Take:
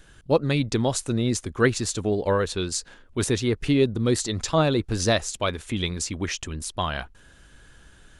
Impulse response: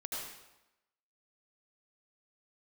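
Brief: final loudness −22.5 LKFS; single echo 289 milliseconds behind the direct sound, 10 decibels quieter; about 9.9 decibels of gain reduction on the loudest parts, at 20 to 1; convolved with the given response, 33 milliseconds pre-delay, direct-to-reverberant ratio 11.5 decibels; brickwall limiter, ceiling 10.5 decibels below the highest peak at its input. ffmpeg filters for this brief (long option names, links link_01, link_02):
-filter_complex "[0:a]acompressor=threshold=-24dB:ratio=20,alimiter=limit=-22.5dB:level=0:latency=1,aecho=1:1:289:0.316,asplit=2[link_01][link_02];[1:a]atrim=start_sample=2205,adelay=33[link_03];[link_02][link_03]afir=irnorm=-1:irlink=0,volume=-13dB[link_04];[link_01][link_04]amix=inputs=2:normalize=0,volume=10dB"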